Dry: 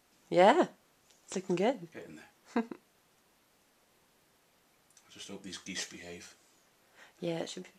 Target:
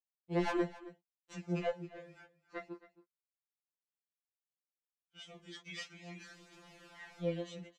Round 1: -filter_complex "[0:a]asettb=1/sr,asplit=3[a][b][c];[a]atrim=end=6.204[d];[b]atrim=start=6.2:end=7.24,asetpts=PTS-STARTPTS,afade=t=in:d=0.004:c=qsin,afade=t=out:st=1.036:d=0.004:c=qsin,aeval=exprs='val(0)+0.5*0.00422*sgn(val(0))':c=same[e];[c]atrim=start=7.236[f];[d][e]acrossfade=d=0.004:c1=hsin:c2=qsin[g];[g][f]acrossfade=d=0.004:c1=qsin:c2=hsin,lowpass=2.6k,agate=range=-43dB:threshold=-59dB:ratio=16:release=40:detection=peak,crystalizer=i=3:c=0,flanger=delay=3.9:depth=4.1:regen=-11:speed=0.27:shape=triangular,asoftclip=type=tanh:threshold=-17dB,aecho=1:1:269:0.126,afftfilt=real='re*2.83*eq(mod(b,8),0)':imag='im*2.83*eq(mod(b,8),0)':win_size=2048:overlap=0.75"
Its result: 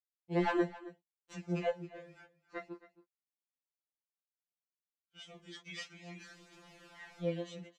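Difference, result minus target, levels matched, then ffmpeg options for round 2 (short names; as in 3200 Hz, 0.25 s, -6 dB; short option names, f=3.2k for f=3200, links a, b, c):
soft clip: distortion -8 dB
-filter_complex "[0:a]asettb=1/sr,asplit=3[a][b][c];[a]atrim=end=6.204[d];[b]atrim=start=6.2:end=7.24,asetpts=PTS-STARTPTS,afade=t=in:d=0.004:c=qsin,afade=t=out:st=1.036:d=0.004:c=qsin,aeval=exprs='val(0)+0.5*0.00422*sgn(val(0))':c=same[e];[c]atrim=start=7.236[f];[d][e]acrossfade=d=0.004:c1=hsin:c2=qsin[g];[g][f]acrossfade=d=0.004:c1=qsin:c2=hsin,lowpass=2.6k,agate=range=-43dB:threshold=-59dB:ratio=16:release=40:detection=peak,crystalizer=i=3:c=0,flanger=delay=3.9:depth=4.1:regen=-11:speed=0.27:shape=triangular,asoftclip=type=tanh:threshold=-25dB,aecho=1:1:269:0.126,afftfilt=real='re*2.83*eq(mod(b,8),0)':imag='im*2.83*eq(mod(b,8),0)':win_size=2048:overlap=0.75"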